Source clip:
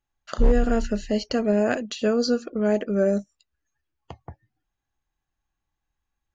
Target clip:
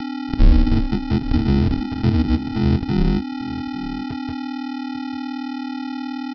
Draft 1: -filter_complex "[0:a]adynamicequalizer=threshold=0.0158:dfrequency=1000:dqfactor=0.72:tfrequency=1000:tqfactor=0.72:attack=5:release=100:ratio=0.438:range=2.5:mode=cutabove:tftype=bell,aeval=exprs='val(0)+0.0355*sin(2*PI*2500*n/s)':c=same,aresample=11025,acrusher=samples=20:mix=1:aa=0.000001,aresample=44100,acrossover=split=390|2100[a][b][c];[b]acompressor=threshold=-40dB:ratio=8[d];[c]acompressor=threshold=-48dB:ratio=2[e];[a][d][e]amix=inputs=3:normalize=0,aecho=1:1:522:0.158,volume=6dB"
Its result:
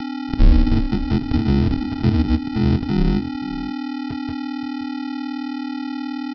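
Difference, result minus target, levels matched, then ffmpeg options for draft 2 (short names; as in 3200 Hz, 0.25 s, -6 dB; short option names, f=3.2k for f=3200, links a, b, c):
echo 0.324 s early
-filter_complex "[0:a]adynamicequalizer=threshold=0.0158:dfrequency=1000:dqfactor=0.72:tfrequency=1000:tqfactor=0.72:attack=5:release=100:ratio=0.438:range=2.5:mode=cutabove:tftype=bell,aeval=exprs='val(0)+0.0355*sin(2*PI*2500*n/s)':c=same,aresample=11025,acrusher=samples=20:mix=1:aa=0.000001,aresample=44100,acrossover=split=390|2100[a][b][c];[b]acompressor=threshold=-40dB:ratio=8[d];[c]acompressor=threshold=-48dB:ratio=2[e];[a][d][e]amix=inputs=3:normalize=0,aecho=1:1:846:0.158,volume=6dB"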